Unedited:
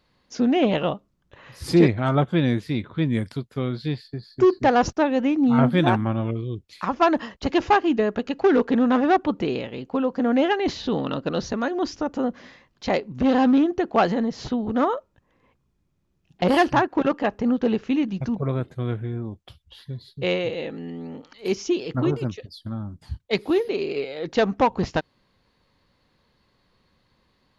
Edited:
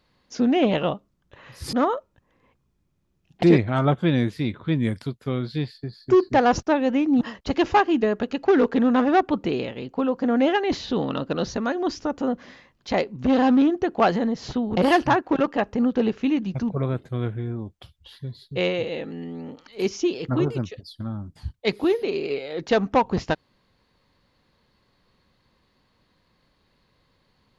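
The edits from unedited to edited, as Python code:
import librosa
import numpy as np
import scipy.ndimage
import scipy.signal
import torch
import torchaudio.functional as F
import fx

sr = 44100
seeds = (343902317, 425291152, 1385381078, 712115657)

y = fx.edit(x, sr, fx.cut(start_s=5.51, length_s=1.66),
    fx.move(start_s=14.73, length_s=1.7, to_s=1.73), tone=tone)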